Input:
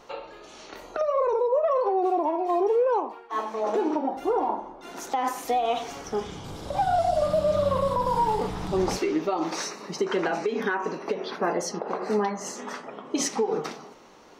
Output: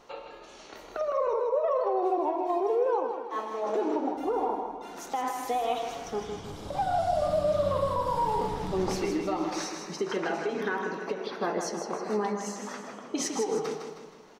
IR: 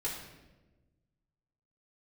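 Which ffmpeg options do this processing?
-filter_complex "[0:a]aecho=1:1:158|316|474|632|790:0.447|0.197|0.0865|0.0381|0.0167,asplit=2[link_01][link_02];[1:a]atrim=start_sample=2205,adelay=105[link_03];[link_02][link_03]afir=irnorm=-1:irlink=0,volume=-17dB[link_04];[link_01][link_04]amix=inputs=2:normalize=0,volume=-4.5dB"

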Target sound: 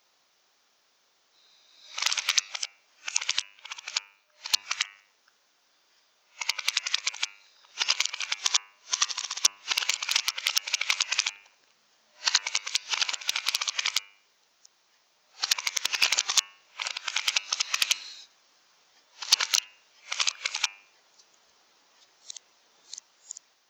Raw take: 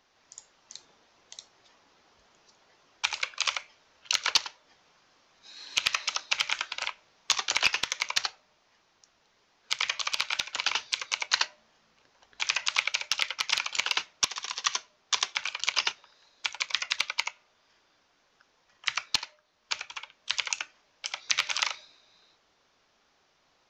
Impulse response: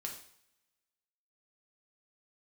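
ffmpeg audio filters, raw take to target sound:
-af "areverse,aemphasis=mode=production:type=bsi,bandreject=frequency=100.1:width_type=h:width=4,bandreject=frequency=200.2:width_type=h:width=4,bandreject=frequency=300.3:width_type=h:width=4,bandreject=frequency=400.4:width_type=h:width=4,bandreject=frequency=500.5:width_type=h:width=4,bandreject=frequency=600.6:width_type=h:width=4,bandreject=frequency=700.7:width_type=h:width=4,bandreject=frequency=800.8:width_type=h:width=4,bandreject=frequency=900.9:width_type=h:width=4,bandreject=frequency=1001:width_type=h:width=4,bandreject=frequency=1101.1:width_type=h:width=4,bandreject=frequency=1201.2:width_type=h:width=4,bandreject=frequency=1301.3:width_type=h:width=4,bandreject=frequency=1401.4:width_type=h:width=4,bandreject=frequency=1501.5:width_type=h:width=4,bandreject=frequency=1601.6:width_type=h:width=4,bandreject=frequency=1701.7:width_type=h:width=4,bandreject=frequency=1801.8:width_type=h:width=4,bandreject=frequency=1901.9:width_type=h:width=4,bandreject=frequency=2002:width_type=h:width=4,bandreject=frequency=2102.1:width_type=h:width=4,bandreject=frequency=2202.2:width_type=h:width=4,bandreject=frequency=2302.3:width_type=h:width=4,bandreject=frequency=2402.4:width_type=h:width=4,bandreject=frequency=2502.5:width_type=h:width=4,bandreject=frequency=2602.6:width_type=h:width=4,bandreject=frequency=2702.7:width_type=h:width=4,bandreject=frequency=2802.8:width_type=h:width=4,bandreject=frequency=2902.9:width_type=h:width=4,volume=-2dB"

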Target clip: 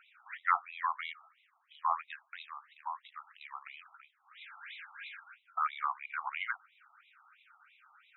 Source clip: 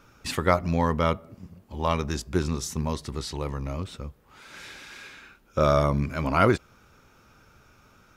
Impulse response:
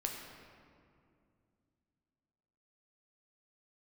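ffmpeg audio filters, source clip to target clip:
-filter_complex "[0:a]tiltshelf=frequency=1300:gain=-6,acrossover=split=100|520|1800[link_01][link_02][link_03][link_04];[link_04]acompressor=threshold=-43dB:ratio=5[link_05];[link_01][link_02][link_03][link_05]amix=inputs=4:normalize=0,afftfilt=real='re*between(b*sr/1024,960*pow(2900/960,0.5+0.5*sin(2*PI*3*pts/sr))/1.41,960*pow(2900/960,0.5+0.5*sin(2*PI*3*pts/sr))*1.41)':imag='im*between(b*sr/1024,960*pow(2900/960,0.5+0.5*sin(2*PI*3*pts/sr))/1.41,960*pow(2900/960,0.5+0.5*sin(2*PI*3*pts/sr))*1.41)':win_size=1024:overlap=0.75"

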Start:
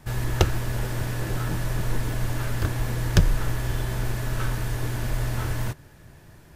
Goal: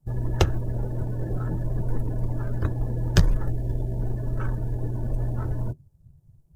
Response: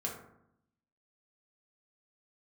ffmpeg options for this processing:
-filter_complex "[0:a]acrossover=split=130|930|5800[link_01][link_02][link_03][link_04];[link_03]aeval=exprs='sgn(val(0))*max(abs(val(0))-0.00708,0)':channel_layout=same[link_05];[link_01][link_02][link_05][link_04]amix=inputs=4:normalize=0,asettb=1/sr,asplit=3[link_06][link_07][link_08];[link_06]atrim=end=3.494[link_09];[link_07]atrim=start=3.49:end=3.98,asetpts=PTS-STARTPTS,afade=type=in:duration=0.004:curve=qsin,afade=type=out:start_time=0.486:duration=0.004:curve=qsin,equalizer=frequency=1200:width_type=o:width=0.44:gain=-12.5[link_10];[link_08]atrim=start=3.976[link_11];[link_09][link_10]acrossfade=duration=0.004:curve1=hsin:curve2=qsin[link_12];[link_12][link_11]acrossfade=duration=0.004:curve1=qsin:curve2=hsin,acrusher=bits=4:mode=log:mix=0:aa=0.000001,afftdn=noise_reduction=23:noise_floor=-35"

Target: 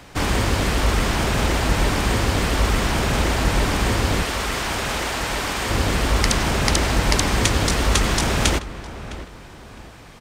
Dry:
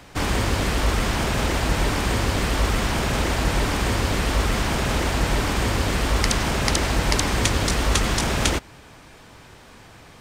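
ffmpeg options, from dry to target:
ffmpeg -i in.wav -filter_complex "[0:a]asettb=1/sr,asplit=3[link_01][link_02][link_03];[link_01]atrim=end=4.234[link_04];[link_02]atrim=start=4.23:end=5.7,asetpts=PTS-STARTPTS,afade=type=in:duration=0.004:curve=qsin,afade=type=out:start_time=1.466:duration=0.004:curve=qsin,lowshelf=frequency=350:gain=-11.5[link_05];[link_03]atrim=start=5.696[link_06];[link_04][link_05]acrossfade=duration=0.004:curve1=hsin:curve2=qsin[link_07];[link_07][link_06]acrossfade=duration=0.004:curve1=qsin:curve2=hsin,asplit=2[link_08][link_09];[link_09]adelay=659,lowpass=frequency=2000:poles=1,volume=-13.5dB,asplit=2[link_10][link_11];[link_11]adelay=659,lowpass=frequency=2000:poles=1,volume=0.36,asplit=2[link_12][link_13];[link_13]adelay=659,lowpass=frequency=2000:poles=1,volume=0.36[link_14];[link_10][link_12][link_14]amix=inputs=3:normalize=0[link_15];[link_08][link_15]amix=inputs=2:normalize=0,volume=2dB" out.wav

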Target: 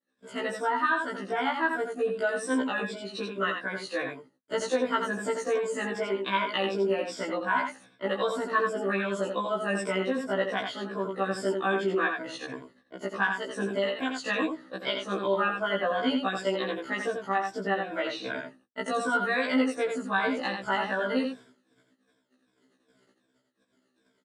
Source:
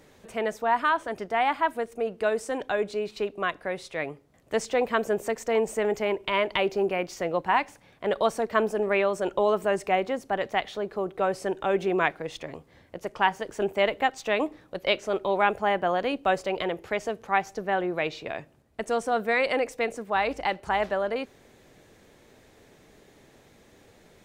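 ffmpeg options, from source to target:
ffmpeg -i in.wav -af "afftfilt=real='re*pow(10,14/40*sin(2*PI*(1.7*log(max(b,1)*sr/1024/100)/log(2)-(-2.6)*(pts-256)/sr)))':imag='im*pow(10,14/40*sin(2*PI*(1.7*log(max(b,1)*sr/1024/100)/log(2)-(-2.6)*(pts-256)/sr)))':win_size=1024:overlap=0.75,agate=range=-43dB:threshold=-50dB:ratio=16:detection=peak,equalizer=frequency=690:width=1.5:gain=-4,acompressor=threshold=-24dB:ratio=3,highpass=220,equalizer=frequency=250:width_type=q:width=4:gain=8,equalizer=frequency=400:width_type=q:width=4:gain=-5,equalizer=frequency=810:width_type=q:width=4:gain=-5,equalizer=frequency=1500:width_type=q:width=4:gain=4,equalizer=frequency=2300:width_type=q:width=4:gain=-9,equalizer=frequency=6300:width_type=q:width=4:gain=-8,lowpass=frequency=9400:width=0.5412,lowpass=frequency=9400:width=1.3066,aecho=1:1:85:0.531,afftfilt=real='re*1.73*eq(mod(b,3),0)':imag='im*1.73*eq(mod(b,3),0)':win_size=2048:overlap=0.75,volume=3.5dB" out.wav

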